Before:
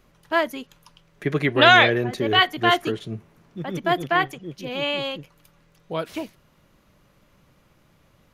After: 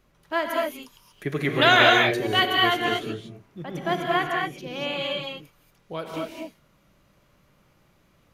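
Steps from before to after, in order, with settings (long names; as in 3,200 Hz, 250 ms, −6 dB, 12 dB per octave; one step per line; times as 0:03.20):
0:00.50–0:02.57: high-shelf EQ 8,400 Hz +11.5 dB
reverb whose tail is shaped and stops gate 260 ms rising, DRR −0.5 dB
level −5 dB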